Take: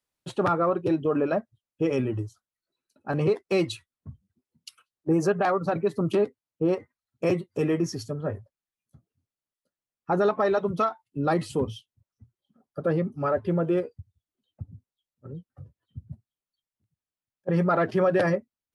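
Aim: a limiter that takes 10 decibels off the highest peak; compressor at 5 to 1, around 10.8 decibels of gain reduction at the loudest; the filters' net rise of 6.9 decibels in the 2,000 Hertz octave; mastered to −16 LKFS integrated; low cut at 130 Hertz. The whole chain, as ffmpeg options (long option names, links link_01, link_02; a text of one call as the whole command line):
ffmpeg -i in.wav -af "highpass=130,equalizer=frequency=2000:width_type=o:gain=9,acompressor=threshold=-30dB:ratio=5,volume=22.5dB,alimiter=limit=-5dB:level=0:latency=1" out.wav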